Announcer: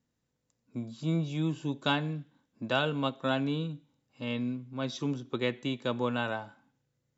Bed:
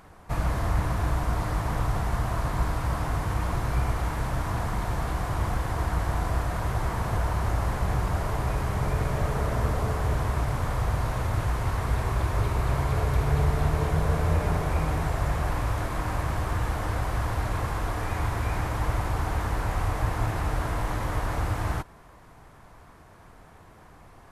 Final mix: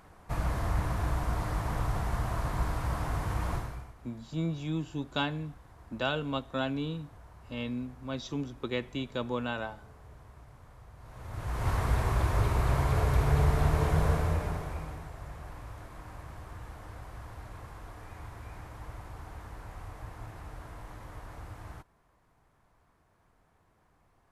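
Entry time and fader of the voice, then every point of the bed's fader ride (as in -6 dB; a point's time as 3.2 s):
3.30 s, -2.5 dB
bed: 3.55 s -4.5 dB
3.95 s -26 dB
10.95 s -26 dB
11.69 s -1.5 dB
14.07 s -1.5 dB
15.1 s -17 dB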